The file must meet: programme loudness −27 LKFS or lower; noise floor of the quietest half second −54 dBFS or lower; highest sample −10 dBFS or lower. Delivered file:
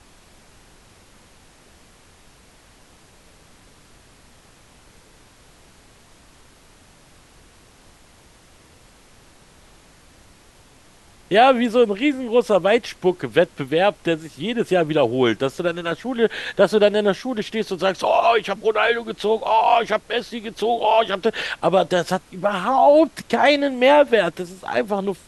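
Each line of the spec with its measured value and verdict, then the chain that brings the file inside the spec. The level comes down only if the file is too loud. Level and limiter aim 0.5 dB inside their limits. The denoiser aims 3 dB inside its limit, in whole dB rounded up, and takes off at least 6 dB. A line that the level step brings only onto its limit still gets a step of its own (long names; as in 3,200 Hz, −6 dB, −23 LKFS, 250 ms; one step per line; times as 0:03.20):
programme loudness −19.0 LKFS: out of spec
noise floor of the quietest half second −51 dBFS: out of spec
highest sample −2.0 dBFS: out of spec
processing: level −8.5 dB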